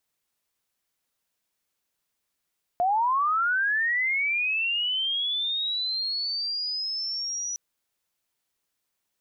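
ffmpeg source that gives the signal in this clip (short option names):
-f lavfi -i "aevalsrc='pow(10,(-20-8.5*t/4.76)/20)*sin(2*PI*(690*t+5210*t*t/(2*4.76)))':d=4.76:s=44100"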